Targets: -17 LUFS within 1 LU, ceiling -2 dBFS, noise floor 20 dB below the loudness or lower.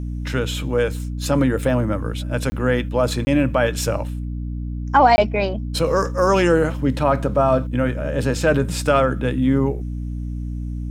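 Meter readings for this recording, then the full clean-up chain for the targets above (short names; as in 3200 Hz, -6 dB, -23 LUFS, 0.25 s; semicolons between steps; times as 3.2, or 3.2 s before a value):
dropouts 3; longest dropout 20 ms; hum 60 Hz; harmonics up to 300 Hz; hum level -24 dBFS; loudness -20.5 LUFS; peak -2.5 dBFS; loudness target -17.0 LUFS
-> interpolate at 2.5/3.25/5.16, 20 ms; notches 60/120/180/240/300 Hz; gain +3.5 dB; limiter -2 dBFS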